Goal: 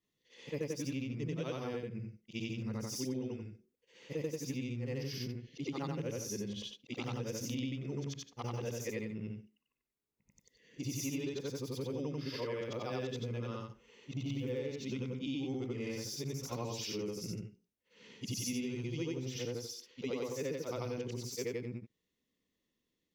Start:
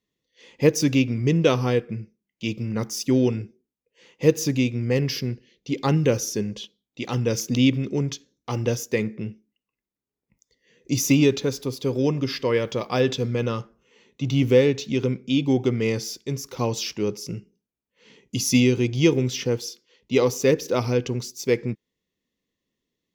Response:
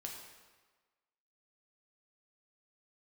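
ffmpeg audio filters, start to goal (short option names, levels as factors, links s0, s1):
-af "afftfilt=real='re':imag='-im':win_size=8192:overlap=0.75,acompressor=threshold=0.0126:ratio=6,volume=1.19"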